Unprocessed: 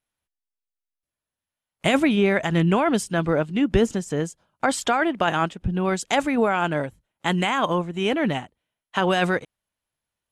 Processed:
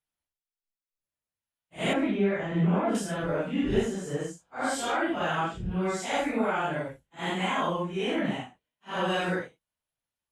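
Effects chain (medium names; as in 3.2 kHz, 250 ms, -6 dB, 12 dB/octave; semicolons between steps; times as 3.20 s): phase randomisation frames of 200 ms; 1.93–2.95 s: low-pass 1.4 kHz 6 dB/octave; trim -6 dB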